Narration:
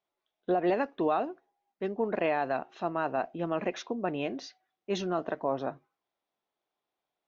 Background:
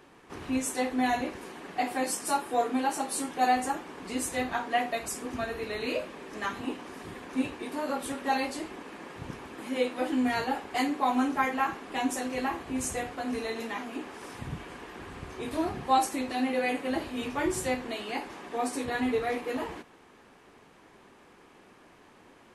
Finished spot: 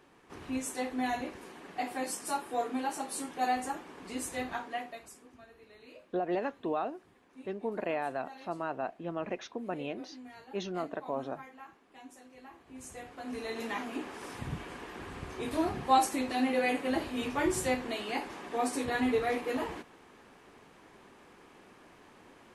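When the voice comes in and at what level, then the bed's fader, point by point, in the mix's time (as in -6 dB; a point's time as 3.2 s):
5.65 s, -5.0 dB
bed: 4.54 s -5.5 dB
5.38 s -22 dB
12.41 s -22 dB
13.7 s -0.5 dB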